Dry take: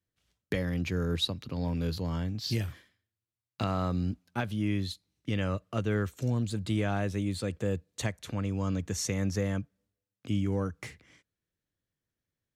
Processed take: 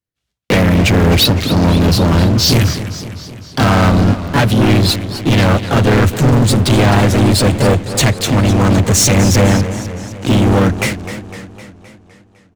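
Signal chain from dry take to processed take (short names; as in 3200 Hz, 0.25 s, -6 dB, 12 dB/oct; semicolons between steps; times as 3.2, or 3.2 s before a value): harmoniser -7 st -17 dB, +3 st -5 dB; sample leveller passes 5; warbling echo 0.256 s, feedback 58%, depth 149 cents, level -12 dB; gain +7.5 dB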